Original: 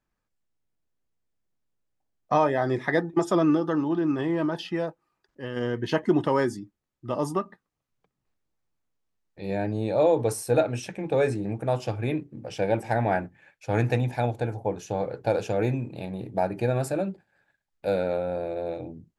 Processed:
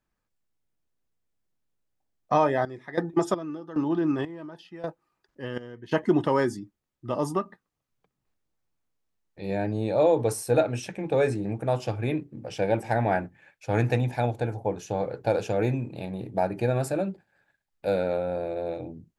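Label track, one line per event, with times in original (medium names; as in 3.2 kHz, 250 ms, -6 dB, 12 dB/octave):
2.520000	5.910000	square tremolo 1.7 Hz -> 0.53 Hz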